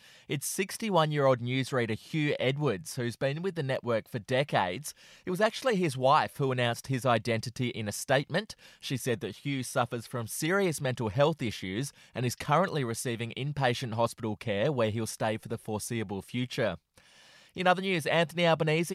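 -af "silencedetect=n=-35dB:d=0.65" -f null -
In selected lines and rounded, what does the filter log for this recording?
silence_start: 16.75
silence_end: 17.57 | silence_duration: 0.82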